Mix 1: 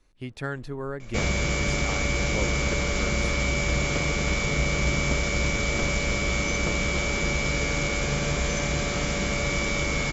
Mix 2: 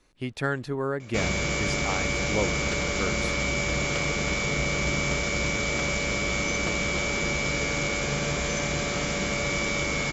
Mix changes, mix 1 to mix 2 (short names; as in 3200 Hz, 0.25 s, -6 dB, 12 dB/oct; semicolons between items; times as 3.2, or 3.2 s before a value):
speech +5.0 dB; first sound: add tilt +3.5 dB/oct; master: add low shelf 71 Hz -11 dB